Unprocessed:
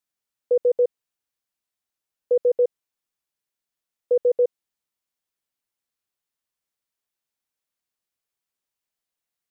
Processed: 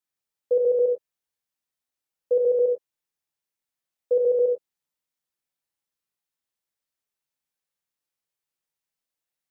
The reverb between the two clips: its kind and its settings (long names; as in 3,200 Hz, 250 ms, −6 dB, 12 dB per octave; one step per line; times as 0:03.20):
reverb whose tail is shaped and stops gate 130 ms flat, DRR 0.5 dB
level −4.5 dB